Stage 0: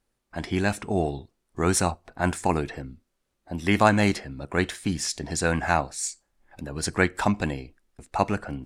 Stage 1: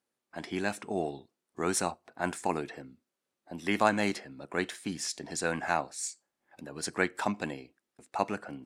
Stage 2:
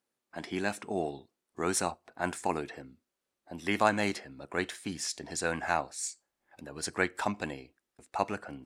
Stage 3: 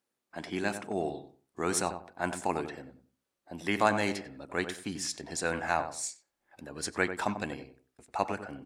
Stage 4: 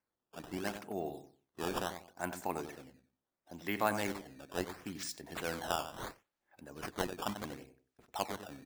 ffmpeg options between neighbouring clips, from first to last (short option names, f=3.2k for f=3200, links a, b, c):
-af "highpass=210,volume=-6dB"
-af "asubboost=boost=3.5:cutoff=83"
-filter_complex "[0:a]asplit=2[a][b];[b]adelay=94,lowpass=f=1.2k:p=1,volume=-8dB,asplit=2[c][d];[d]adelay=94,lowpass=f=1.2k:p=1,volume=0.26,asplit=2[e][f];[f]adelay=94,lowpass=f=1.2k:p=1,volume=0.26[g];[a][c][e][g]amix=inputs=4:normalize=0"
-af "acrusher=samples=12:mix=1:aa=0.000001:lfo=1:lforange=19.2:lforate=0.73,volume=-6.5dB"